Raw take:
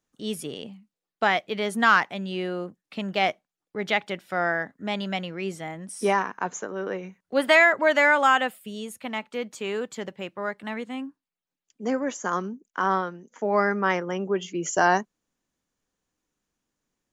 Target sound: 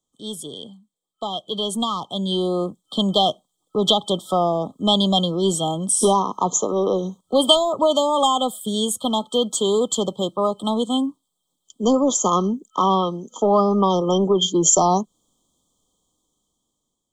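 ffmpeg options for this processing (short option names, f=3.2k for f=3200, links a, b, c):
-filter_complex "[0:a]acrossover=split=200[a][b];[b]acompressor=threshold=-26dB:ratio=3[c];[a][c]amix=inputs=2:normalize=0,acrossover=split=1200[d][e];[d]asoftclip=type=tanh:threshold=-22.5dB[f];[f][e]amix=inputs=2:normalize=0,afftfilt=real='re*(1-between(b*sr/4096,1300,3100))':imag='im*(1-between(b*sr/4096,1300,3100))':win_size=4096:overlap=0.75,dynaudnorm=f=930:g=5:m=14dB,equalizer=f=1.6k:t=o:w=0.33:g=-3,equalizer=f=3.15k:t=o:w=0.33:g=11,equalizer=f=5k:t=o:w=0.33:g=-4,equalizer=f=8k:t=o:w=0.33:g=12,volume=-1dB"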